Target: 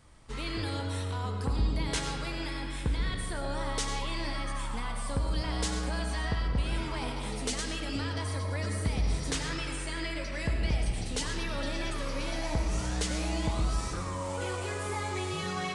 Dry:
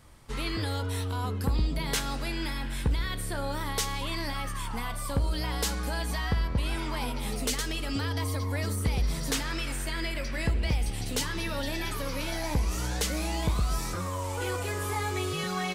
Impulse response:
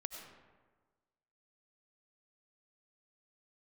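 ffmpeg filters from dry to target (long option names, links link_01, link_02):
-filter_complex "[1:a]atrim=start_sample=2205[link_01];[0:a][link_01]afir=irnorm=-1:irlink=0,aresample=22050,aresample=44100"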